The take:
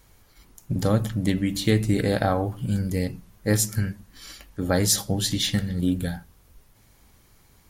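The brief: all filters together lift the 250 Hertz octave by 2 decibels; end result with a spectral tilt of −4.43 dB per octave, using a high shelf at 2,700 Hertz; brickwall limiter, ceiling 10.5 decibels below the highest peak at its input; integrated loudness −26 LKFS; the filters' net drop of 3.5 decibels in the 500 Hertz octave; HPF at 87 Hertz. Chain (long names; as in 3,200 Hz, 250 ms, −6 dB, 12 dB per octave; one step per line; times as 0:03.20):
high-pass filter 87 Hz
parametric band 250 Hz +4 dB
parametric band 500 Hz −5.5 dB
high-shelf EQ 2,700 Hz +5 dB
brickwall limiter −14 dBFS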